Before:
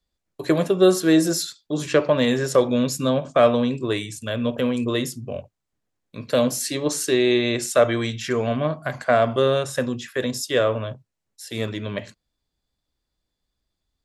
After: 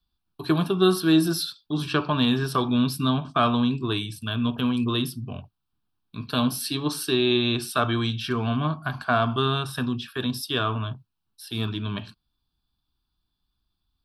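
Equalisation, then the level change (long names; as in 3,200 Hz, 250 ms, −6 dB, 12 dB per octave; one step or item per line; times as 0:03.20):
phaser with its sweep stopped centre 2,000 Hz, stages 6
+2.5 dB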